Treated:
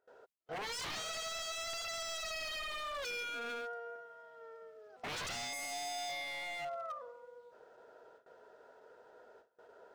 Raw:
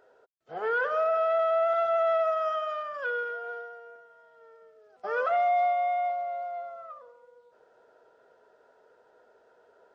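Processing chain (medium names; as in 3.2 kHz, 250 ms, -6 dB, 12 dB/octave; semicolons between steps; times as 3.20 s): gate with hold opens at -52 dBFS; in parallel at -0.5 dB: compression, threshold -40 dBFS, peak gain reduction 16 dB; 5.53–6.65 s: on the sum: waveshaping leveller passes 1; wavefolder -32 dBFS; trim -4 dB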